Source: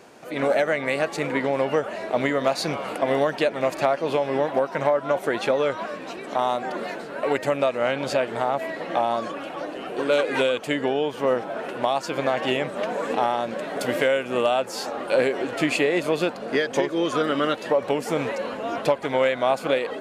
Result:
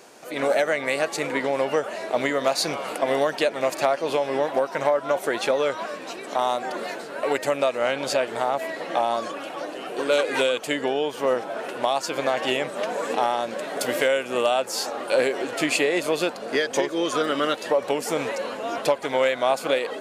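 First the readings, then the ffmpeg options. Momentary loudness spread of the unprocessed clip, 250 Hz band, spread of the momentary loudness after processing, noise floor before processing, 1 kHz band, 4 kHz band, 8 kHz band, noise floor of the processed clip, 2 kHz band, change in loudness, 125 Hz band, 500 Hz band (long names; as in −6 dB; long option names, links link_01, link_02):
7 LU, −2.5 dB, 7 LU, −36 dBFS, 0.0 dB, +2.5 dB, +6.5 dB, −37 dBFS, +0.5 dB, 0.0 dB, −6.0 dB, −0.5 dB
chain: -af "bass=frequency=250:gain=-7,treble=frequency=4000:gain=7"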